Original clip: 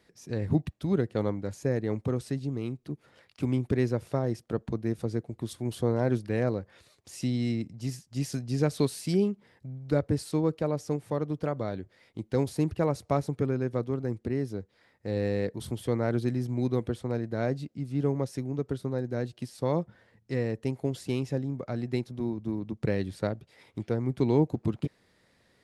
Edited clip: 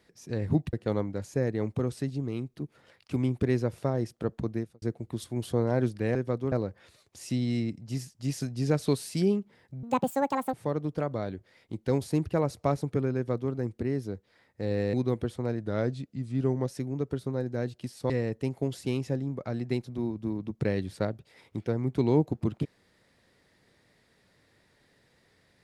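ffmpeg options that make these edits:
ffmpeg -i in.wav -filter_complex "[0:a]asplit=11[link_01][link_02][link_03][link_04][link_05][link_06][link_07][link_08][link_09][link_10][link_11];[link_01]atrim=end=0.732[link_12];[link_02]atrim=start=1.018:end=5.11,asetpts=PTS-STARTPTS,afade=type=out:start_time=3.832:duration=0.26:curve=qua[link_13];[link_03]atrim=start=5.11:end=6.442,asetpts=PTS-STARTPTS,afade=type=in:duration=0.004:curve=hsin[link_14];[link_04]atrim=start=13.608:end=13.982[link_15];[link_05]atrim=start=6.438:end=9.754[link_16];[link_06]atrim=start=9.75:end=10.99,asetpts=PTS-STARTPTS,asetrate=77616,aresample=44100,atrim=end_sample=31070,asetpts=PTS-STARTPTS[link_17];[link_07]atrim=start=10.986:end=15.392[link_18];[link_08]atrim=start=16.588:end=17.264[link_19];[link_09]atrim=start=17.26:end=18.24,asetpts=PTS-STARTPTS,asetrate=41013,aresample=44100[link_20];[link_10]atrim=start=18.236:end=19.682[link_21];[link_11]atrim=start=20.318[link_22];[link_13][link_14]concat=n=2:v=0:a=1[link_23];[link_12][link_23]acrossfade=duration=0.004:curve1=hsin:curve2=hsin[link_24];[link_24][link_15]acrossfade=duration=0.004:curve1=hsin:curve2=hsin[link_25];[link_25][link_16]acrossfade=duration=0.004:curve1=hsin:curve2=hsin[link_26];[link_26][link_17]acrossfade=duration=0.004:curve1=hsin:curve2=hsin[link_27];[link_27][link_18]acrossfade=duration=0.004:curve1=hsin:curve2=hsin[link_28];[link_28][link_19]acrossfade=duration=0.004:curve1=hsin:curve2=hsin[link_29];[link_29][link_20]acrossfade=duration=0.004:curve1=hsin:curve2=hsin[link_30];[link_30][link_21]acrossfade=duration=0.004:curve1=hsin:curve2=hsin[link_31];[link_31][link_22]acrossfade=duration=0.004:curve1=hsin:curve2=hsin" out.wav

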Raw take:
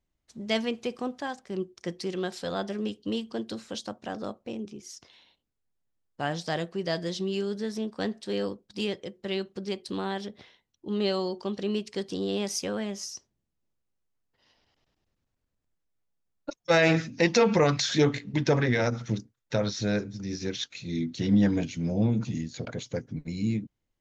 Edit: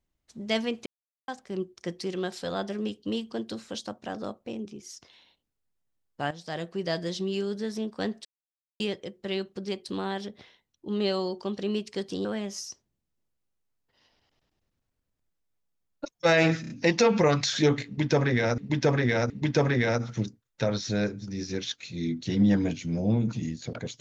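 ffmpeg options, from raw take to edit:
ffmpeg -i in.wav -filter_complex "[0:a]asplit=12[link_01][link_02][link_03][link_04][link_05][link_06][link_07][link_08][link_09][link_10][link_11][link_12];[link_01]atrim=end=0.86,asetpts=PTS-STARTPTS,afade=type=out:start_time=0.856:duration=0.004:curve=hsin[link_13];[link_02]atrim=start=0.86:end=1.28,asetpts=PTS-STARTPTS,volume=0[link_14];[link_03]atrim=start=1.28:end=6.31,asetpts=PTS-STARTPTS,afade=type=in:duration=0.004:curve=hsin,afade=type=out:start_time=5.026:duration=0.004:curve=hsin:silence=0.199526[link_15];[link_04]atrim=start=6.31:end=8.25,asetpts=PTS-STARTPTS,afade=type=in:duration=0.46:silence=0.199526,afade=type=out:start_time=1.936:duration=0.004:curve=hsin[link_16];[link_05]atrim=start=8.25:end=8.8,asetpts=PTS-STARTPTS,volume=0[link_17];[link_06]atrim=start=8.8:end=12.252,asetpts=PTS-STARTPTS,afade=type=in:duration=0.004:curve=hsin[link_18];[link_07]atrim=start=12.698:end=17.092[link_19];[link_08]atrim=start=17.058:end=17.092[link_20];[link_09]atrim=start=17.058:end=17.092[link_21];[link_10]atrim=start=17.058:end=18.942[link_22];[link_11]atrim=start=18.218:end=18.942[link_23];[link_12]atrim=start=18.218[link_24];[link_13][link_14][link_15][link_16][link_17][link_18]concat=n=6:v=0:a=1[link_25];[link_25][link_19]acrossfade=duration=0.004:curve1=hsin:curve2=hsin[link_26];[link_26][link_20]acrossfade=duration=0.004:curve1=hsin:curve2=hsin[link_27];[link_27][link_21]acrossfade=duration=0.004:curve1=hsin:curve2=hsin[link_28];[link_28][link_22]acrossfade=duration=0.004:curve1=hsin:curve2=hsin[link_29];[link_29][link_23]acrossfade=duration=0.004:curve1=hsin:curve2=hsin[link_30];[link_30][link_24]acrossfade=duration=0.004:curve1=hsin:curve2=hsin" out.wav

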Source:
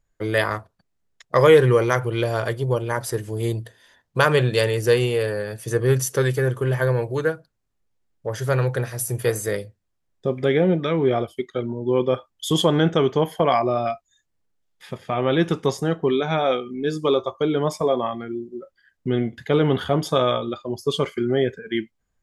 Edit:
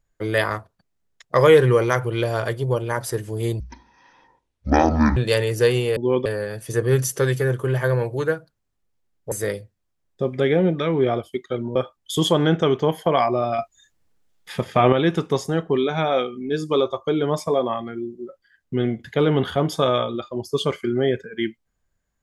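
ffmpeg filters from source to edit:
ffmpeg -i in.wav -filter_complex "[0:a]asplit=9[link_01][link_02][link_03][link_04][link_05][link_06][link_07][link_08][link_09];[link_01]atrim=end=3.604[link_10];[link_02]atrim=start=3.6:end=4.43,asetpts=PTS-STARTPTS,asetrate=23373,aresample=44100,atrim=end_sample=69062,asetpts=PTS-STARTPTS[link_11];[link_03]atrim=start=4.426:end=5.232[link_12];[link_04]atrim=start=11.798:end=12.092[link_13];[link_05]atrim=start=5.228:end=8.292[link_14];[link_06]atrim=start=9.358:end=11.802[link_15];[link_07]atrim=start=12.088:end=13.922[link_16];[link_08]atrim=start=13.918:end=15.262,asetpts=PTS-STARTPTS,volume=8dB[link_17];[link_09]atrim=start=15.258[link_18];[link_10][link_11]acrossfade=duration=0.004:curve1=hsin:curve2=hsin[link_19];[link_19][link_12]acrossfade=duration=0.004:curve1=hsin:curve2=hsin[link_20];[link_20][link_13]acrossfade=duration=0.004:curve1=hsin:curve2=hsin[link_21];[link_21][link_14]acrossfade=duration=0.004:curve1=hsin:curve2=hsin[link_22];[link_22][link_15]acrossfade=duration=0.004:curve1=hsin:curve2=hsin[link_23];[link_23][link_16]acrossfade=duration=0.004:curve1=hsin:curve2=hsin[link_24];[link_24][link_17]acrossfade=duration=0.004:curve1=hsin:curve2=hsin[link_25];[link_25][link_18]acrossfade=duration=0.004:curve1=hsin:curve2=hsin" out.wav

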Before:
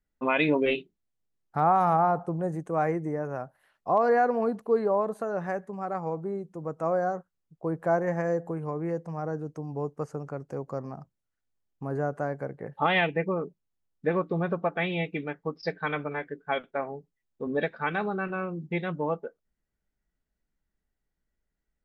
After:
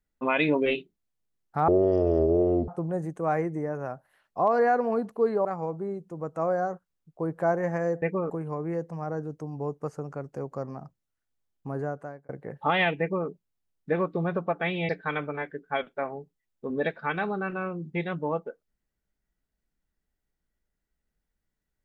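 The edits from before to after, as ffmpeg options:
ffmpeg -i in.wav -filter_complex "[0:a]asplit=8[link_01][link_02][link_03][link_04][link_05][link_06][link_07][link_08];[link_01]atrim=end=1.684[link_09];[link_02]atrim=start=1.68:end=2.18,asetpts=PTS-STARTPTS,asetrate=22050,aresample=44100[link_10];[link_03]atrim=start=2.176:end=4.952[link_11];[link_04]atrim=start=5.888:end=8.462[link_12];[link_05]atrim=start=13.158:end=13.442[link_13];[link_06]atrim=start=8.458:end=12.45,asetpts=PTS-STARTPTS,afade=type=out:start_time=3.422:duration=0.57[link_14];[link_07]atrim=start=12.45:end=15.052,asetpts=PTS-STARTPTS,afade=type=in:duration=0.004:curve=hsin[link_15];[link_08]atrim=start=15.658[link_16];[link_09][link_10]acrossfade=duration=0.004:curve1=hsin:curve2=hsin[link_17];[link_17][link_11]acrossfade=duration=0.004:curve1=hsin:curve2=hsin[link_18];[link_18][link_12]acrossfade=duration=0.004:curve1=hsin:curve2=hsin[link_19];[link_19][link_13]acrossfade=duration=0.004:curve1=hsin:curve2=hsin[link_20];[link_14][link_15]concat=n=2:v=0:a=1[link_21];[link_20][link_21]acrossfade=duration=0.004:curve1=hsin:curve2=hsin[link_22];[link_22][link_16]acrossfade=duration=0.004:curve1=hsin:curve2=hsin" out.wav

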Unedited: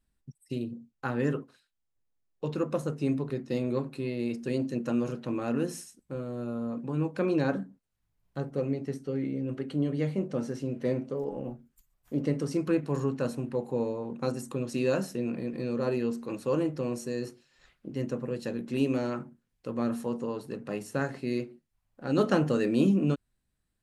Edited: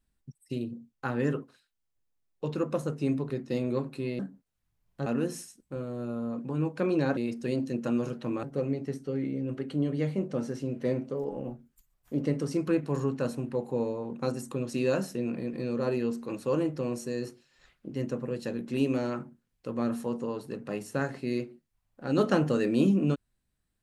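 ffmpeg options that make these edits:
ffmpeg -i in.wav -filter_complex "[0:a]asplit=5[link_01][link_02][link_03][link_04][link_05];[link_01]atrim=end=4.192[link_06];[link_02]atrim=start=7.558:end=8.432[link_07];[link_03]atrim=start=5.448:end=7.562[link_08];[link_04]atrim=start=4.188:end=5.452[link_09];[link_05]atrim=start=8.428[link_10];[link_06][link_07]acrossfade=duration=0.004:curve1=hsin:curve2=hsin[link_11];[link_11][link_08]acrossfade=duration=0.004:curve1=hsin:curve2=hsin[link_12];[link_12][link_09]acrossfade=duration=0.004:curve1=hsin:curve2=hsin[link_13];[link_13][link_10]acrossfade=duration=0.004:curve1=hsin:curve2=hsin" out.wav

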